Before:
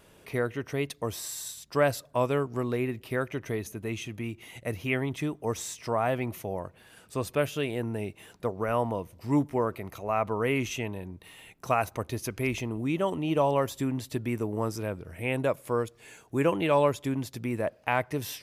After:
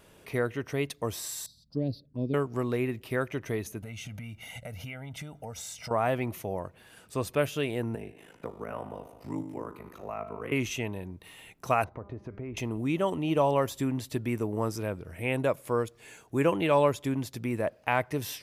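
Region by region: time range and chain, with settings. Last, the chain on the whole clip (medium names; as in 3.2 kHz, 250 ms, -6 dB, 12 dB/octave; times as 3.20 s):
1.46–2.34 s: FFT filter 120 Hz 0 dB, 270 Hz +4 dB, 1.1 kHz -26 dB, 3 kHz -22 dB, 4.5 kHz -2 dB, 6.7 kHz -26 dB + touch-sensitive phaser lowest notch 330 Hz, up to 1.4 kHz, full sweep at -29.5 dBFS
3.82–5.91 s: comb 1.4 ms, depth 87% + compression 12:1, threshold -36 dBFS
7.95–10.52 s: feedback comb 73 Hz, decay 1 s, mix 70% + ring modulator 26 Hz + three bands compressed up and down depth 70%
11.84–12.57 s: low-pass 1.1 kHz + de-hum 200.7 Hz, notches 29 + compression 10:1, threshold -34 dBFS
whole clip: none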